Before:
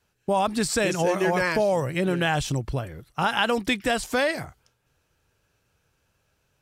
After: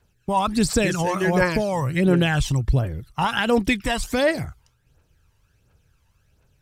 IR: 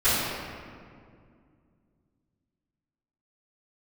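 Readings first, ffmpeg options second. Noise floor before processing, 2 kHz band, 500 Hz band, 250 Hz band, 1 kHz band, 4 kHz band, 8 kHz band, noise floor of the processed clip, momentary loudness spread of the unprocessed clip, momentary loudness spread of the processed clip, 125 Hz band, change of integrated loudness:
−72 dBFS, +1.0 dB, +1.0 dB, +5.5 dB, +1.5 dB, +1.0 dB, +1.5 dB, −65 dBFS, 8 LU, 5 LU, +7.0 dB, +3.0 dB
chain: -af "lowshelf=frequency=100:gain=8.5,aphaser=in_gain=1:out_gain=1:delay=1.1:decay=0.55:speed=1.4:type=triangular"

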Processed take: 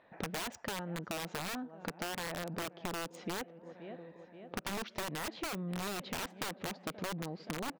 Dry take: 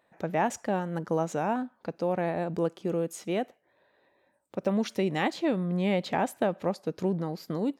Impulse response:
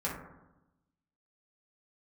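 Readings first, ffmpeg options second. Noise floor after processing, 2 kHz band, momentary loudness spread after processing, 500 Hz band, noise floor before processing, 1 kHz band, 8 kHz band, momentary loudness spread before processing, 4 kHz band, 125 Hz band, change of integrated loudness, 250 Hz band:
−59 dBFS, −3.5 dB, 9 LU, −14.0 dB, −70 dBFS, −9.5 dB, +1.0 dB, 5 LU, +0.5 dB, −10.5 dB, −10.0 dB, −12.5 dB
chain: -filter_complex "[0:a]aecho=1:1:525|1050|1575|2100:0.0631|0.0353|0.0198|0.0111,acrossover=split=4500[link_01][link_02];[link_01]aeval=exprs='(mod(14.1*val(0)+1,2)-1)/14.1':channel_layout=same[link_03];[link_02]acrusher=bits=4:mix=0:aa=0.5[link_04];[link_03][link_04]amix=inputs=2:normalize=0,acompressor=threshold=-42dB:ratio=12,volume=5.5dB"

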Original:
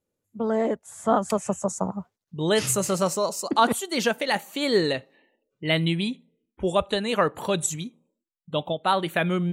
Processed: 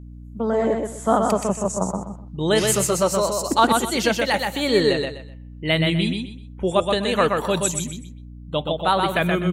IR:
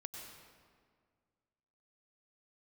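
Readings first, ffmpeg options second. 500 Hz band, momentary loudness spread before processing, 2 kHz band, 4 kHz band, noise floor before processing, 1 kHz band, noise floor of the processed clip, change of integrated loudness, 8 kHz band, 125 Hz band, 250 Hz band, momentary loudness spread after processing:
+4.0 dB, 9 LU, +4.0 dB, +4.0 dB, −83 dBFS, +4.0 dB, −39 dBFS, +4.0 dB, +4.0 dB, +4.0 dB, +3.5 dB, 13 LU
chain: -filter_complex "[0:a]asplit=2[link_01][link_02];[link_02]aecho=0:1:125|250|375:0.631|0.158|0.0394[link_03];[link_01][link_03]amix=inputs=2:normalize=0,aeval=exprs='val(0)+0.01*(sin(2*PI*60*n/s)+sin(2*PI*2*60*n/s)/2+sin(2*PI*3*60*n/s)/3+sin(2*PI*4*60*n/s)/4+sin(2*PI*5*60*n/s)/5)':channel_layout=same,volume=2.5dB"

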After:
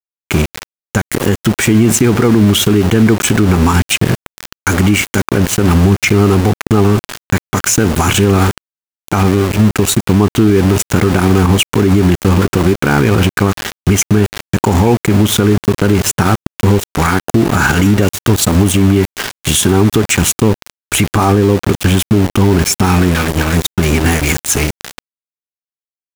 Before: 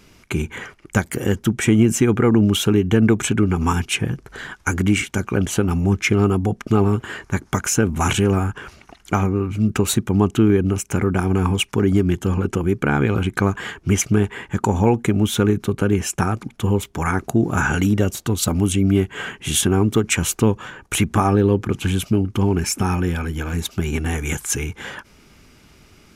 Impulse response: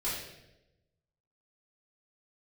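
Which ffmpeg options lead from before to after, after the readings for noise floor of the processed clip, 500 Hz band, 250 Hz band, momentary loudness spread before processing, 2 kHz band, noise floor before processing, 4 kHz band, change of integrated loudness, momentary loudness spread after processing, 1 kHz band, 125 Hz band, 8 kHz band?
below −85 dBFS, +7.0 dB, +7.0 dB, 9 LU, +8.0 dB, −52 dBFS, +9.0 dB, +7.5 dB, 6 LU, +8.0 dB, +7.5 dB, +8.5 dB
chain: -filter_complex "[0:a]asplit=2[link_01][link_02];[1:a]atrim=start_sample=2205[link_03];[link_02][link_03]afir=irnorm=-1:irlink=0,volume=-24dB[link_04];[link_01][link_04]amix=inputs=2:normalize=0,aeval=exprs='val(0)*gte(abs(val(0)),0.0668)':channel_layout=same,alimiter=level_in=12.5dB:limit=-1dB:release=50:level=0:latency=1,volume=-1dB"

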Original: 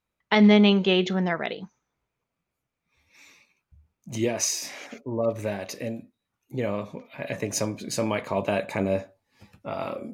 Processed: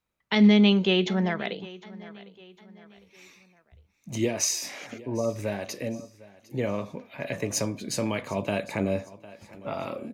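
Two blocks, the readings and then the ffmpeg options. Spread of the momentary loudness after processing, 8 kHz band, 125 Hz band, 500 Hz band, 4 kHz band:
19 LU, 0.0 dB, −0.5 dB, −2.5 dB, −0.5 dB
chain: -filter_complex "[0:a]aecho=1:1:754|1508|2262:0.0891|0.0365|0.015,acrossover=split=350|2100[link_01][link_02][link_03];[link_02]alimiter=limit=-22dB:level=0:latency=1:release=327[link_04];[link_01][link_04][link_03]amix=inputs=3:normalize=0"

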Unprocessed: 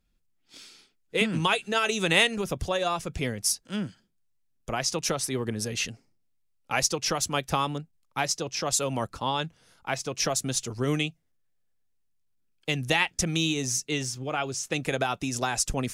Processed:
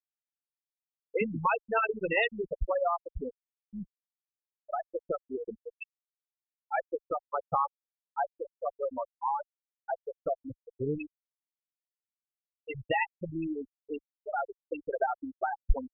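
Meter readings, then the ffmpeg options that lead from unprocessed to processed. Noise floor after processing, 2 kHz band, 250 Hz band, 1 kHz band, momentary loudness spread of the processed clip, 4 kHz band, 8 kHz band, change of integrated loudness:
below −85 dBFS, −7.0 dB, −8.5 dB, −1.5 dB, 15 LU, below −20 dB, below −40 dB, −6.0 dB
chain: -filter_complex "[0:a]asplit=2[link_01][link_02];[link_02]highpass=frequency=720:poles=1,volume=9dB,asoftclip=type=tanh:threshold=-5.5dB[link_03];[link_01][link_03]amix=inputs=2:normalize=0,lowpass=frequency=1200:poles=1,volume=-6dB,afftfilt=real='re*gte(hypot(re,im),0.2)':imag='im*gte(hypot(re,im),0.2)':win_size=1024:overlap=0.75,asubboost=boost=10.5:cutoff=53"

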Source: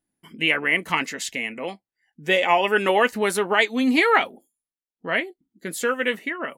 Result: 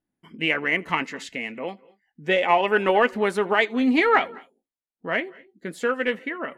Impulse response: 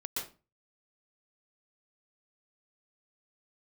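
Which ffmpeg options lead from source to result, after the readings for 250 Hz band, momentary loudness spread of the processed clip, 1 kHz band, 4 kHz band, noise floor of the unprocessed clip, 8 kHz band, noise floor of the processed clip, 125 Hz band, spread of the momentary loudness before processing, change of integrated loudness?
0.0 dB, 15 LU, −0.5 dB, −4.5 dB, below −85 dBFS, below −10 dB, below −85 dBFS, 0.0 dB, 15 LU, −1.0 dB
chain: -filter_complex "[0:a]aeval=exprs='0.631*(cos(1*acos(clip(val(0)/0.631,-1,1)))-cos(1*PI/2))+0.0126*(cos(7*acos(clip(val(0)/0.631,-1,1)))-cos(7*PI/2))':channel_layout=same,aemphasis=mode=reproduction:type=75fm,asplit=2[link_01][link_02];[1:a]atrim=start_sample=2205,afade=type=out:start_time=0.21:duration=0.01,atrim=end_sample=9702,adelay=82[link_03];[link_02][link_03]afir=irnorm=-1:irlink=0,volume=-24.5dB[link_04];[link_01][link_04]amix=inputs=2:normalize=0"

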